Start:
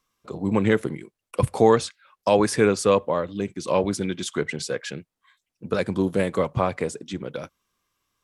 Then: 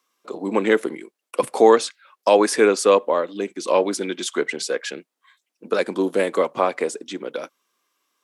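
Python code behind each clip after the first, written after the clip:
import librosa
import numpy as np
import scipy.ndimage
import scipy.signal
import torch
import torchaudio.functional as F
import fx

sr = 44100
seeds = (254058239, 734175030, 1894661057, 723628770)

y = scipy.signal.sosfilt(scipy.signal.butter(4, 270.0, 'highpass', fs=sr, output='sos'), x)
y = F.gain(torch.from_numpy(y), 4.0).numpy()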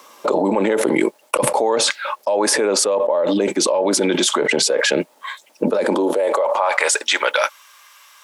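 y = fx.filter_sweep_highpass(x, sr, from_hz=110.0, to_hz=1600.0, start_s=5.54, end_s=6.88, q=1.3)
y = fx.small_body(y, sr, hz=(600.0, 850.0), ring_ms=30, db=14)
y = fx.env_flatten(y, sr, amount_pct=100)
y = F.gain(torch.from_numpy(y), -16.0).numpy()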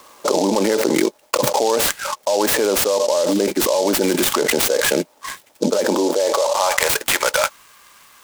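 y = fx.noise_mod_delay(x, sr, seeds[0], noise_hz=5100.0, depth_ms=0.063)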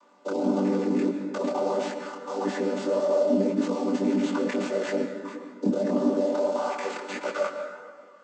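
y = fx.chord_vocoder(x, sr, chord='major triad', root=55)
y = fx.rev_plate(y, sr, seeds[1], rt60_s=2.0, hf_ratio=0.45, predelay_ms=105, drr_db=6.0)
y = fx.detune_double(y, sr, cents=57)
y = F.gain(torch.from_numpy(y), -5.0).numpy()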